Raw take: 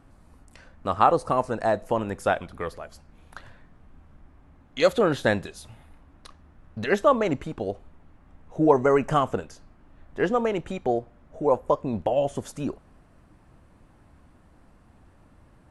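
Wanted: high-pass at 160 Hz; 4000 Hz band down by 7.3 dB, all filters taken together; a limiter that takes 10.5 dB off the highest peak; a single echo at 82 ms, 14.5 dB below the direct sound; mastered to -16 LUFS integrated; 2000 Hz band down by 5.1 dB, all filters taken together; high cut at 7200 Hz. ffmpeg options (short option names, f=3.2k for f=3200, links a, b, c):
-af "highpass=160,lowpass=7.2k,equalizer=f=2k:t=o:g=-5.5,equalizer=f=4k:t=o:g=-7,alimiter=limit=-16dB:level=0:latency=1,aecho=1:1:82:0.188,volume=13dB"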